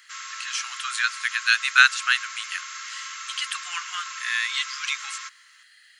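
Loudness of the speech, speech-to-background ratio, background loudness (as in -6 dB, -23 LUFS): -24.0 LUFS, 10.5 dB, -34.5 LUFS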